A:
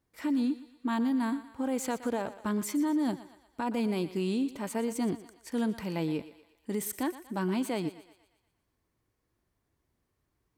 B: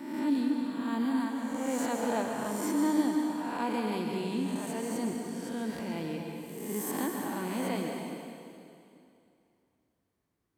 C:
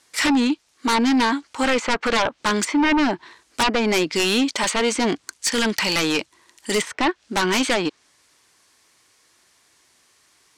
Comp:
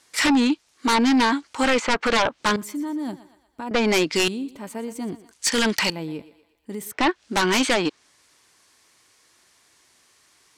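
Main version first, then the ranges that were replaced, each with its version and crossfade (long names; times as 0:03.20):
C
0:02.56–0:03.71: punch in from A
0:04.28–0:05.31: punch in from A
0:05.90–0:06.92: punch in from A
not used: B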